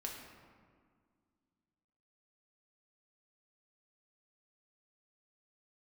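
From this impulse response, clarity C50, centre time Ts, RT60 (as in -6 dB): 3.0 dB, 61 ms, 1.9 s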